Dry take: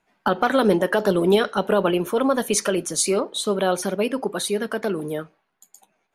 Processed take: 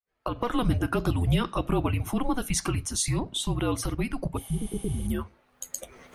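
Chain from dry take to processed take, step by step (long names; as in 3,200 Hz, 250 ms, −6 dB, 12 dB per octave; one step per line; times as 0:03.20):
fade in at the beginning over 0.63 s
camcorder AGC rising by 38 dB per second
healed spectral selection 0:04.40–0:05.05, 780–12,000 Hz after
frequency shifter −250 Hz
level −6 dB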